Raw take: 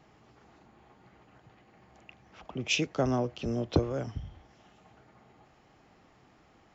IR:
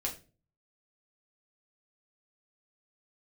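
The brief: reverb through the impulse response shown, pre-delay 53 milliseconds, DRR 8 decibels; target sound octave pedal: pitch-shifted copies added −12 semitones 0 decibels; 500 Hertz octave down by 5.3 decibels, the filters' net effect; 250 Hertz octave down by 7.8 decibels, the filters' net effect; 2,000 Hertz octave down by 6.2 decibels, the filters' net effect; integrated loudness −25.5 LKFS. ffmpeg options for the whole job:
-filter_complex "[0:a]equalizer=frequency=250:width_type=o:gain=-9,equalizer=frequency=500:width_type=o:gain=-3.5,equalizer=frequency=2000:width_type=o:gain=-9,asplit=2[link_01][link_02];[1:a]atrim=start_sample=2205,adelay=53[link_03];[link_02][link_03]afir=irnorm=-1:irlink=0,volume=-10.5dB[link_04];[link_01][link_04]amix=inputs=2:normalize=0,asplit=2[link_05][link_06];[link_06]asetrate=22050,aresample=44100,atempo=2,volume=0dB[link_07];[link_05][link_07]amix=inputs=2:normalize=0,volume=7dB"

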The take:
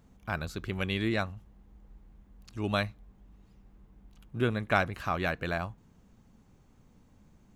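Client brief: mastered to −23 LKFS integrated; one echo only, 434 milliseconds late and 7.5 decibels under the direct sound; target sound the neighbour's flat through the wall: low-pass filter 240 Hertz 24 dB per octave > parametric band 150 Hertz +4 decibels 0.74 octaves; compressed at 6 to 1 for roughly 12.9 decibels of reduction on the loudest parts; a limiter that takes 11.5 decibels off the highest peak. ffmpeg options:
ffmpeg -i in.wav -af "acompressor=threshold=-34dB:ratio=6,alimiter=level_in=8.5dB:limit=-24dB:level=0:latency=1,volume=-8.5dB,lowpass=frequency=240:width=0.5412,lowpass=frequency=240:width=1.3066,equalizer=frequency=150:width_type=o:width=0.74:gain=4,aecho=1:1:434:0.422,volume=24dB" out.wav

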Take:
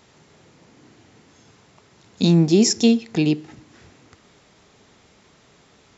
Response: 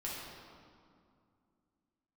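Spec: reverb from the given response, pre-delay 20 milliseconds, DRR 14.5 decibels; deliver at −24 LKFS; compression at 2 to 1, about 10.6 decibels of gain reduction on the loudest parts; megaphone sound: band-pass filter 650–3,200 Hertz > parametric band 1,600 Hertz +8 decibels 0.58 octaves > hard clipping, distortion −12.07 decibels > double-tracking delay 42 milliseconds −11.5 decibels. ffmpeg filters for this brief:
-filter_complex "[0:a]acompressor=threshold=-31dB:ratio=2,asplit=2[link_01][link_02];[1:a]atrim=start_sample=2205,adelay=20[link_03];[link_02][link_03]afir=irnorm=-1:irlink=0,volume=-16.5dB[link_04];[link_01][link_04]amix=inputs=2:normalize=0,highpass=650,lowpass=3200,equalizer=frequency=1600:width_type=o:width=0.58:gain=8,asoftclip=type=hard:threshold=-34dB,asplit=2[link_05][link_06];[link_06]adelay=42,volume=-11.5dB[link_07];[link_05][link_07]amix=inputs=2:normalize=0,volume=21.5dB"

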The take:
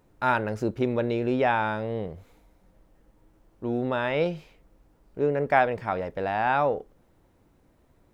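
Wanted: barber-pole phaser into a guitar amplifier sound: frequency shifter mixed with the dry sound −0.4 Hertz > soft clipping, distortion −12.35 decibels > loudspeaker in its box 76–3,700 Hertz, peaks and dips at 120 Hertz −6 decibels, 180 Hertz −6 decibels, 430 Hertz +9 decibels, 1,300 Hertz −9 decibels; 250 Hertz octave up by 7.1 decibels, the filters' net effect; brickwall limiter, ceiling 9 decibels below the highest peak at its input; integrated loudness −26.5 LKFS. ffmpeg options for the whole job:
ffmpeg -i in.wav -filter_complex "[0:a]equalizer=frequency=250:width_type=o:gain=8.5,alimiter=limit=-16dB:level=0:latency=1,asplit=2[link_01][link_02];[link_02]afreqshift=-0.4[link_03];[link_01][link_03]amix=inputs=2:normalize=1,asoftclip=threshold=-26dB,highpass=76,equalizer=frequency=120:width_type=q:width=4:gain=-6,equalizer=frequency=180:width_type=q:width=4:gain=-6,equalizer=frequency=430:width_type=q:width=4:gain=9,equalizer=frequency=1300:width_type=q:width=4:gain=-9,lowpass=frequency=3700:width=0.5412,lowpass=frequency=3700:width=1.3066,volume=4.5dB" out.wav

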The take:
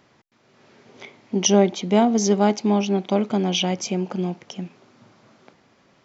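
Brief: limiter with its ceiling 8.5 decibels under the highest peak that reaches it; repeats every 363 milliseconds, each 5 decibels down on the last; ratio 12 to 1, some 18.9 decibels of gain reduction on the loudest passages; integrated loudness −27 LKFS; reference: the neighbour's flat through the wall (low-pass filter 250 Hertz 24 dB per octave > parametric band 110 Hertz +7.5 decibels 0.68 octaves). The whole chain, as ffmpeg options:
ffmpeg -i in.wav -af "acompressor=threshold=-30dB:ratio=12,alimiter=level_in=3.5dB:limit=-24dB:level=0:latency=1,volume=-3.5dB,lowpass=frequency=250:width=0.5412,lowpass=frequency=250:width=1.3066,equalizer=frequency=110:width_type=o:width=0.68:gain=7.5,aecho=1:1:363|726|1089|1452|1815|2178|2541:0.562|0.315|0.176|0.0988|0.0553|0.031|0.0173,volume=11.5dB" out.wav

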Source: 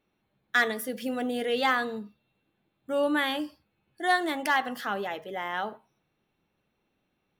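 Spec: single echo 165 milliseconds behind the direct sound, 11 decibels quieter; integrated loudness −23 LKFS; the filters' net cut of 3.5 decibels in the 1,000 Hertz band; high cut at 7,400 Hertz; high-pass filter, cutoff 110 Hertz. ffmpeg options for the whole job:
ffmpeg -i in.wav -af "highpass=110,lowpass=7400,equalizer=frequency=1000:width_type=o:gain=-5,aecho=1:1:165:0.282,volume=7dB" out.wav

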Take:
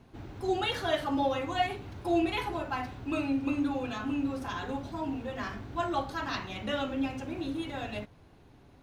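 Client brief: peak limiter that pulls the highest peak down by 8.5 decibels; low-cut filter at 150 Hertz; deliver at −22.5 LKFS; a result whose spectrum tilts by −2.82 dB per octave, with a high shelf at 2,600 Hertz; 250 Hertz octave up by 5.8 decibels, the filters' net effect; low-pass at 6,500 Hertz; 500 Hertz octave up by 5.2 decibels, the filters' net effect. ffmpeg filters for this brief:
ffmpeg -i in.wav -af "highpass=150,lowpass=6500,equalizer=frequency=250:width_type=o:gain=5.5,equalizer=frequency=500:width_type=o:gain=5,highshelf=frequency=2600:gain=9,volume=7.5dB,alimiter=limit=-13dB:level=0:latency=1" out.wav

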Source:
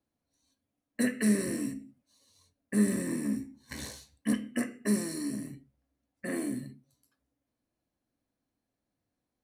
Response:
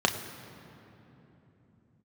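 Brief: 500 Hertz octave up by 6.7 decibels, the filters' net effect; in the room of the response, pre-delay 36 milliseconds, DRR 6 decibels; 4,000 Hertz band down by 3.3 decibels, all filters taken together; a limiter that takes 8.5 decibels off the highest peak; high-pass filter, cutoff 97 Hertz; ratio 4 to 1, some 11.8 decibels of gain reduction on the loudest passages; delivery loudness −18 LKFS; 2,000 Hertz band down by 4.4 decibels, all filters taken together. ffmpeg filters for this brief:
-filter_complex "[0:a]highpass=97,equalizer=frequency=500:width_type=o:gain=9,equalizer=frequency=2000:width_type=o:gain=-5,equalizer=frequency=4000:width_type=o:gain=-3,acompressor=threshold=-34dB:ratio=4,alimiter=level_in=6.5dB:limit=-24dB:level=0:latency=1,volume=-6.5dB,asplit=2[link_01][link_02];[1:a]atrim=start_sample=2205,adelay=36[link_03];[link_02][link_03]afir=irnorm=-1:irlink=0,volume=-19dB[link_04];[link_01][link_04]amix=inputs=2:normalize=0,volume=23dB"

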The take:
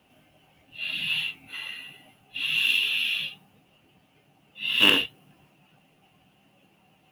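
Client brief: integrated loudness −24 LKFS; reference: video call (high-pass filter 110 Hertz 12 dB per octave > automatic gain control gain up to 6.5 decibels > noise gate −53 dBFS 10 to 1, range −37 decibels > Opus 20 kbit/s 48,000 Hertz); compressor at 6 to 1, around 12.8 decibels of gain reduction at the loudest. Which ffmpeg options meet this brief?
ffmpeg -i in.wav -af "acompressor=threshold=-28dB:ratio=6,highpass=110,dynaudnorm=maxgain=6.5dB,agate=range=-37dB:threshold=-53dB:ratio=10,volume=7dB" -ar 48000 -c:a libopus -b:a 20k out.opus

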